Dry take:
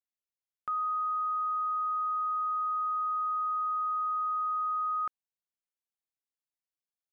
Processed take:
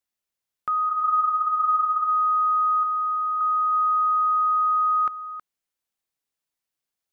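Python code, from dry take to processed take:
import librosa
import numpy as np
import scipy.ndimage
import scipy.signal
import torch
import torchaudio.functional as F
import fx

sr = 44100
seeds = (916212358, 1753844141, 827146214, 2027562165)

y = fx.lowpass(x, sr, hz=1000.0, slope=6, at=(2.83, 3.41))
y = y + 10.0 ** (-11.5 / 20.0) * np.pad(y, (int(320 * sr / 1000.0), 0))[:len(y)]
y = fx.ensemble(y, sr, at=(0.89, 2.1))
y = y * librosa.db_to_amplitude(8.0)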